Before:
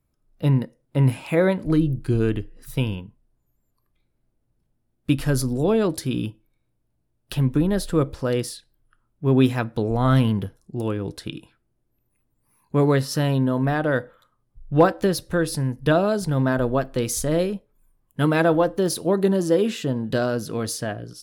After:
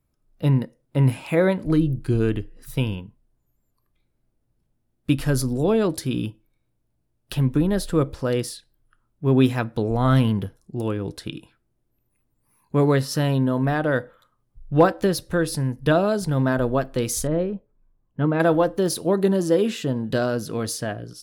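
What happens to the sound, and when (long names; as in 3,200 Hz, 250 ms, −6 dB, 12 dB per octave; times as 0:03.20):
0:17.27–0:18.40: head-to-tape spacing loss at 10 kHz 42 dB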